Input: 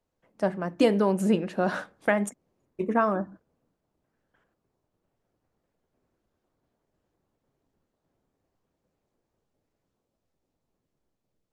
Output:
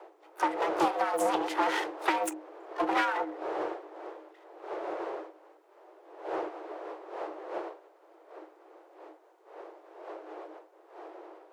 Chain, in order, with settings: comb filter that takes the minimum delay 1.8 ms; wind noise 440 Hz -48 dBFS; compression 8:1, threshold -31 dBFS, peak gain reduction 13.5 dB; harmony voices +7 st -15 dB, +12 st -17 dB; frequency shift +310 Hz; loudspeaker Doppler distortion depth 0.2 ms; trim +7 dB

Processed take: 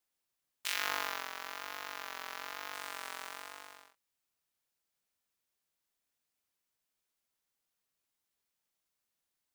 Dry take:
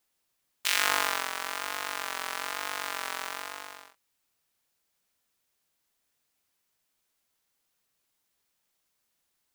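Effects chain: 0.73–2.74 s: peaking EQ 8.7 kHz -11.5 dB 0.38 oct; trim -8.5 dB

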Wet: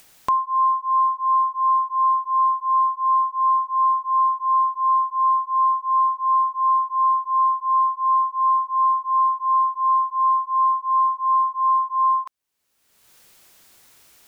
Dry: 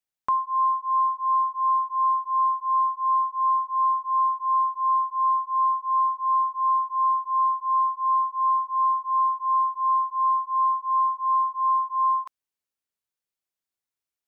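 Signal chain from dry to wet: upward compressor, threshold -30 dBFS; trim +3.5 dB

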